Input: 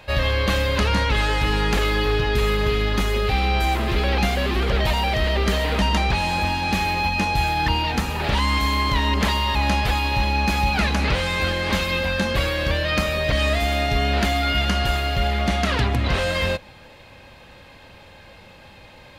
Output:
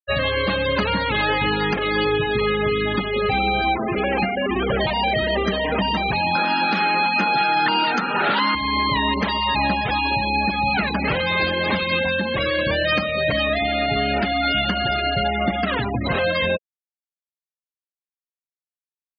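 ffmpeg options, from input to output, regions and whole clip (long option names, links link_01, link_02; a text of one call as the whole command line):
ffmpeg -i in.wav -filter_complex "[0:a]asettb=1/sr,asplit=3[link_01][link_02][link_03];[link_01]atrim=end=3.774[link_04];[link_02]atrim=start=3.77:end=4.5,asetpts=PTS-STARTPTS,afade=type=in:duration=0.004:curve=qsin,afade=type=out:start_time=0.726:duration=0.004:curve=qsin,highpass=frequency=91:poles=1,equalizer=frequency=3700:width=5.8:gain=-10.5[link_05];[link_03]atrim=start=4.496[link_06];[link_04][link_05]acrossfade=duration=0.004:curve1=hsin:curve2=qsin[link_07];[link_07][link_06]acrossfade=duration=0.004:curve1=qsin:curve2=hsin,asettb=1/sr,asplit=3[link_08][link_09][link_10];[link_08]atrim=end=6.354[link_11];[link_09]atrim=start=6.35:end=8.55,asetpts=PTS-STARTPTS,afade=type=in:duration=0.004:curve=qsin,afade=type=out:start_time=2.196:duration=0.004:curve=qsin,equalizer=frequency=1400:width_type=o:width=0.24:gain=14.5,acontrast=42,highpass=frequency=180:width=0.5412,highpass=frequency=180:width=1.3066[link_12];[link_10]atrim=start=8.546[link_13];[link_11][link_12]acrossfade=duration=0.004:curve1=hsin:curve2=qsin[link_14];[link_14][link_13]acrossfade=duration=0.004:curve1=qsin:curve2=hsin,asettb=1/sr,asplit=3[link_15][link_16][link_17];[link_15]atrim=end=11.304[link_18];[link_16]atrim=start=11.3:end=11.72,asetpts=PTS-STARTPTS,afade=type=in:duration=0.004:curve=qsin,afade=type=out:start_time=0.416:duration=0.004:curve=qsin,bandreject=frequency=1400:width=22,acrusher=bits=5:dc=4:mix=0:aa=0.000001[link_19];[link_17]atrim=start=11.716[link_20];[link_18][link_19]acrossfade=duration=0.004:curve1=hsin:curve2=qsin[link_21];[link_21][link_20]acrossfade=duration=0.004:curve1=qsin:curve2=hsin,highpass=140,afftfilt=real='re*gte(hypot(re,im),0.0891)':imag='im*gte(hypot(re,im),0.0891)':win_size=1024:overlap=0.75,alimiter=limit=-15.5dB:level=0:latency=1:release=379,volume=5dB" out.wav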